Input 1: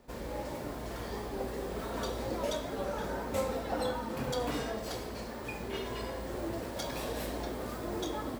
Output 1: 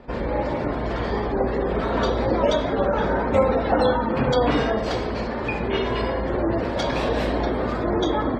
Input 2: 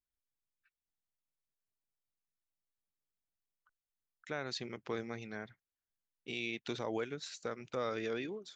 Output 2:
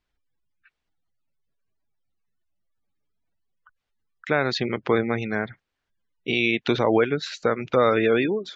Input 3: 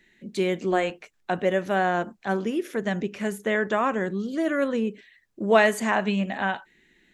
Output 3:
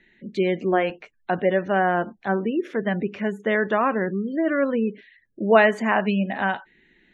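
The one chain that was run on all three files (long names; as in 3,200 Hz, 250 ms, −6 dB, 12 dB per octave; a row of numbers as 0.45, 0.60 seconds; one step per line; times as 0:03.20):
gate on every frequency bin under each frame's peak −30 dB strong
low-pass filter 3,500 Hz 12 dB per octave
loudness normalisation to −23 LKFS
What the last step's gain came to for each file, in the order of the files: +14.0, +18.0, +2.5 decibels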